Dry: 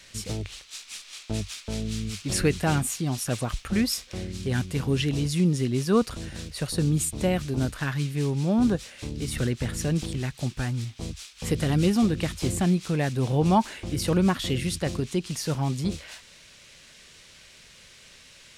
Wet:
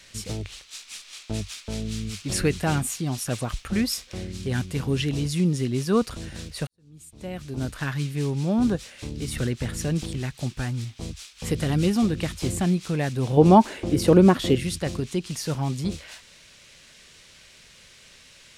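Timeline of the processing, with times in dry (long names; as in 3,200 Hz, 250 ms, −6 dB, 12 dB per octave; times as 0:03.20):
0:06.67–0:07.80: fade in quadratic
0:13.37–0:14.55: parametric band 400 Hz +10.5 dB 2.3 octaves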